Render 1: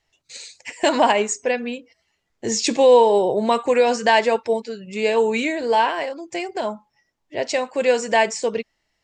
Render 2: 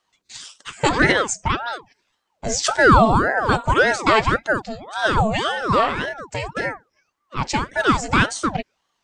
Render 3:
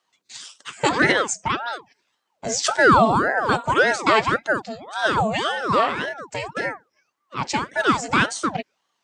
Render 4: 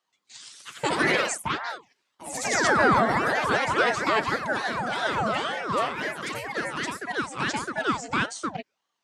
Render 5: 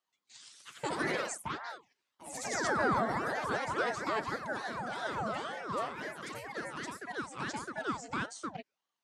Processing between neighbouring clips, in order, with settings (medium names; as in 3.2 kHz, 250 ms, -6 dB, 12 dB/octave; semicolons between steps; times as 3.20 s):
ring modulator with a swept carrier 700 Hz, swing 70%, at 1.8 Hz; trim +3 dB
Bessel high-pass 170 Hz, order 2; trim -1 dB
ever faster or slower copies 159 ms, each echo +2 st, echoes 3; trim -7 dB
dynamic bell 2.7 kHz, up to -6 dB, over -39 dBFS, Q 1.4; trim -9 dB